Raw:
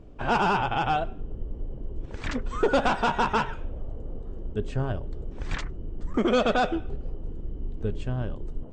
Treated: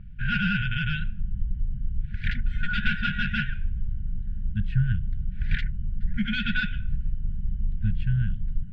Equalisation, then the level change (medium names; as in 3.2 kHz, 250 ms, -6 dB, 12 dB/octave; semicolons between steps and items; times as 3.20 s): dynamic bell 3.4 kHz, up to +4 dB, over -42 dBFS, Q 1.2; brick-wall FIR band-stop 220–1400 Hz; distance through air 410 m; +6.5 dB